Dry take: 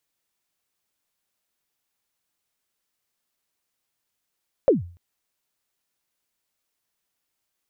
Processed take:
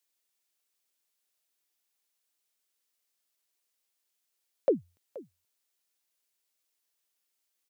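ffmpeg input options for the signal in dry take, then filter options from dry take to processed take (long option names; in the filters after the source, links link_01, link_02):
-f lavfi -i "aevalsrc='0.335*pow(10,-3*t/0.42)*sin(2*PI*(600*0.146/log(87/600)*(exp(log(87/600)*min(t,0.146)/0.146)-1)+87*max(t-0.146,0)))':duration=0.29:sample_rate=44100"
-af "highpass=380,equalizer=frequency=1000:width_type=o:width=2.6:gain=-7,aecho=1:1:477:0.119"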